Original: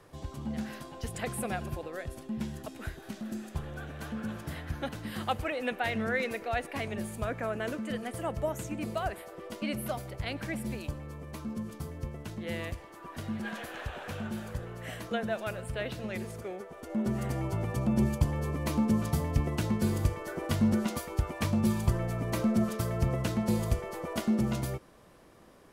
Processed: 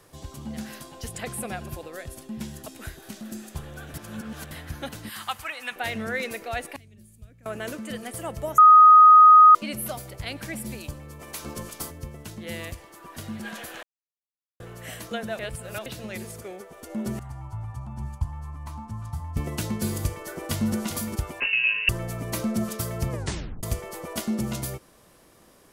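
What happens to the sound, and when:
1.07–1.68 s: treble shelf 7.8 kHz -> 4.4 kHz -6.5 dB
3.94–4.51 s: reverse
5.09–5.76 s: resonant low shelf 720 Hz -11.5 dB, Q 1.5
6.76–7.46 s: amplifier tone stack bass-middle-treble 10-0-1
8.58–9.55 s: bleep 1.25 kHz -9 dBFS
11.19–11.90 s: spectral peaks clipped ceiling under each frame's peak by 18 dB
13.83–14.60 s: mute
15.39–15.86 s: reverse
17.19–19.37 s: FFT filter 110 Hz 0 dB, 190 Hz -17 dB, 280 Hz -15 dB, 470 Hz -28 dB, 870 Hz -1 dB, 2.2 kHz -16 dB, 5.3 kHz -18 dB, 9.1 kHz -18 dB, 13 kHz -24 dB
20.15–20.75 s: echo throw 400 ms, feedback 10%, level -8.5 dB
21.40–21.89 s: frequency inversion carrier 2.8 kHz
23.11 s: tape stop 0.52 s
whole clip: treble shelf 4.1 kHz +11.5 dB

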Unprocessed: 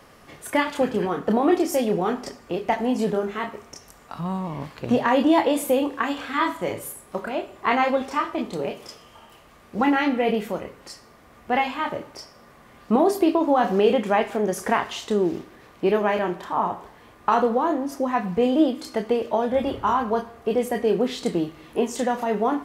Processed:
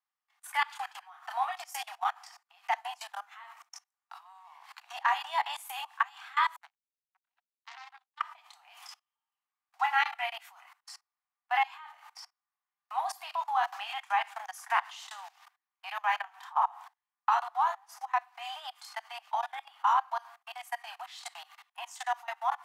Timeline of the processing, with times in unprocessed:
6.56–8.20 s: power-law waveshaper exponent 3
whole clip: gate -42 dBFS, range -25 dB; level held to a coarse grid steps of 23 dB; steep high-pass 740 Hz 96 dB/octave

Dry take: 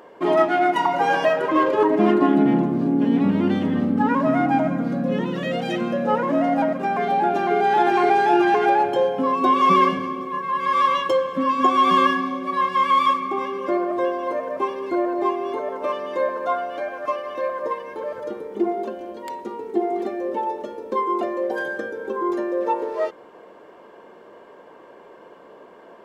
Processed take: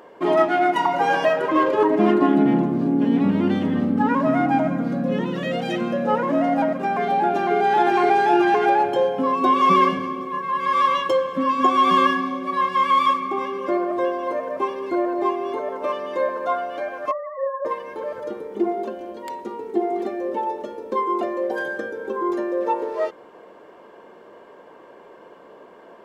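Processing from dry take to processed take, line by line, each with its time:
17.11–17.65 s: formants replaced by sine waves

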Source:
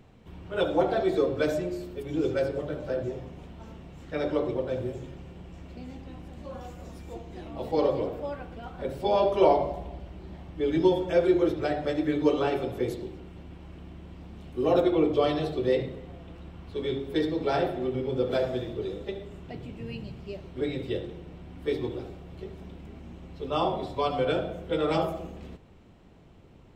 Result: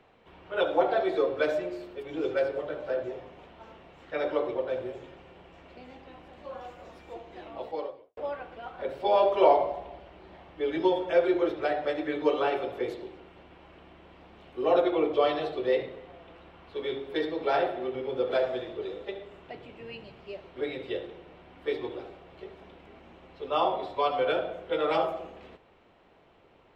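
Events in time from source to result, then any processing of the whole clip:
7.54–8.17 s: fade out quadratic
whole clip: three-band isolator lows -17 dB, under 400 Hz, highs -16 dB, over 4 kHz; trim +2.5 dB

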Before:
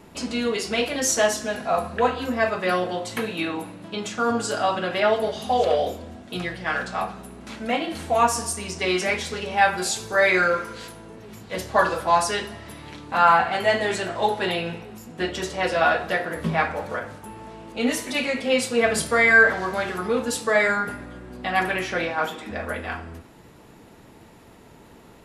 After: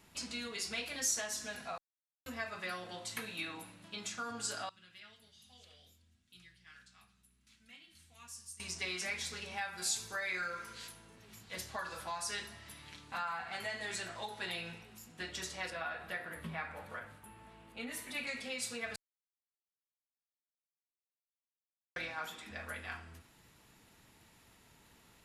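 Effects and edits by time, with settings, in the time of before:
1.78–2.26 s: mute
4.69–8.60 s: amplifier tone stack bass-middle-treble 6-0-2
15.70–18.27 s: peaking EQ 5.9 kHz -12 dB 1.2 oct
18.96–21.96 s: mute
whole clip: dynamic bell 3 kHz, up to -6 dB, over -47 dBFS, Q 6.4; compression 6:1, threshold -22 dBFS; amplifier tone stack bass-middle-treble 5-5-5

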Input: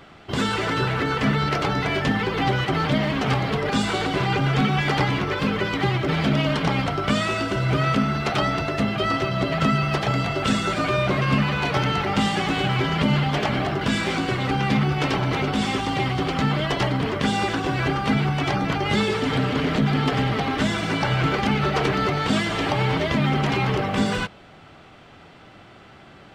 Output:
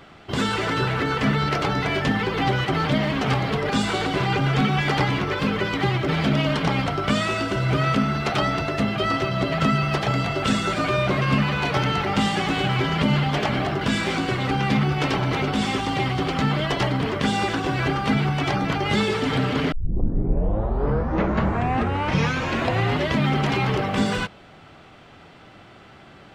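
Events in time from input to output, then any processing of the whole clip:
19.72 s: tape start 3.47 s

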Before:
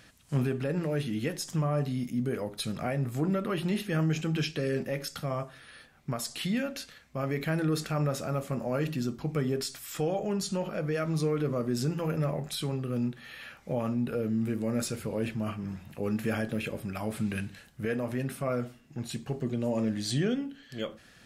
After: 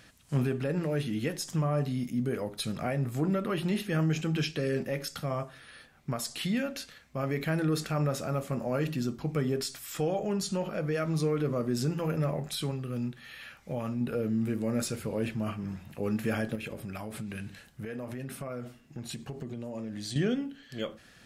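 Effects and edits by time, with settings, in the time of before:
12.71–14.01 s: peaking EQ 430 Hz -4.5 dB 3 oct
16.55–20.16 s: compression, threshold -34 dBFS

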